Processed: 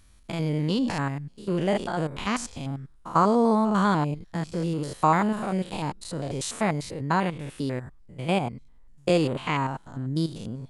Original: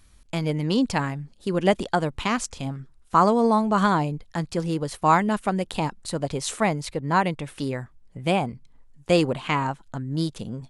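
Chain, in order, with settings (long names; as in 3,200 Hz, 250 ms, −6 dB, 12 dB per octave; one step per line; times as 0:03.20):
spectrum averaged block by block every 100 ms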